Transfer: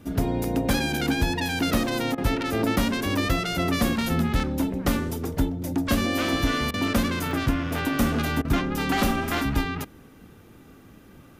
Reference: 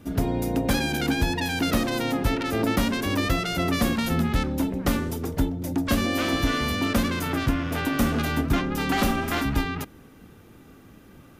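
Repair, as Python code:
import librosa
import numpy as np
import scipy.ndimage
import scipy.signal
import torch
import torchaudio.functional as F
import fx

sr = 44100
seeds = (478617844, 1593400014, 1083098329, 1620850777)

y = fx.fix_interpolate(x, sr, at_s=(0.44, 1.86, 4.01, 4.4, 6.88, 7.31, 7.78), length_ms=2.3)
y = fx.fix_interpolate(y, sr, at_s=(2.15, 6.71, 8.42), length_ms=27.0)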